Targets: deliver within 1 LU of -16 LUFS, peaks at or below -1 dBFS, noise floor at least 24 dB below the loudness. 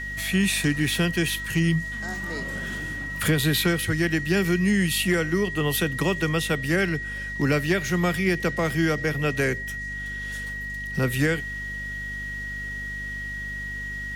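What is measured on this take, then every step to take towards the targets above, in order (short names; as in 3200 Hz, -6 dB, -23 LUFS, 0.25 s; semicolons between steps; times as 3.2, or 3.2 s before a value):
hum 50 Hz; harmonics up to 250 Hz; hum level -36 dBFS; steady tone 1900 Hz; tone level -31 dBFS; loudness -25.0 LUFS; peak -11.0 dBFS; loudness target -16.0 LUFS
-> de-hum 50 Hz, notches 5; notch 1900 Hz, Q 30; gain +9 dB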